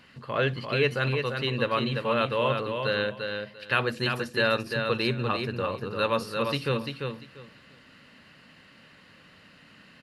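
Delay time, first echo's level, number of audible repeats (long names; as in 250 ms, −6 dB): 344 ms, −5.5 dB, 3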